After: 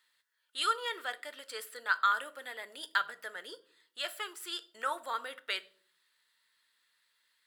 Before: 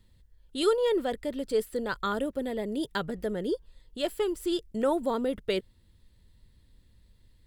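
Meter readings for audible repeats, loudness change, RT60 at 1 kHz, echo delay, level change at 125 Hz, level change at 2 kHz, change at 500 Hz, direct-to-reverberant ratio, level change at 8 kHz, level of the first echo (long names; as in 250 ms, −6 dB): no echo audible, −5.0 dB, 0.45 s, no echo audible, below −35 dB, +5.5 dB, −18.0 dB, 11.5 dB, −0.5 dB, no echo audible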